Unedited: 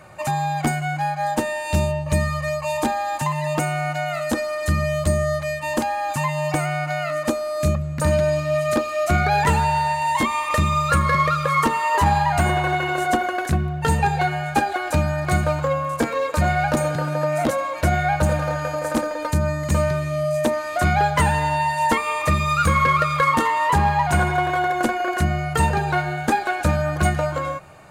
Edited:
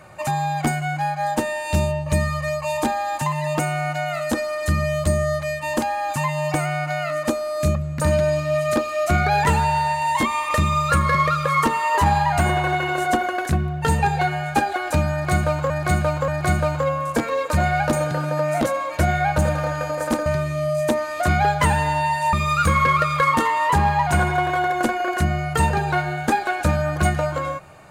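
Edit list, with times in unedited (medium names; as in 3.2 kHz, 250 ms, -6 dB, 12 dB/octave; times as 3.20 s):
15.12–15.70 s: loop, 3 plays
19.10–19.82 s: delete
21.89–22.33 s: delete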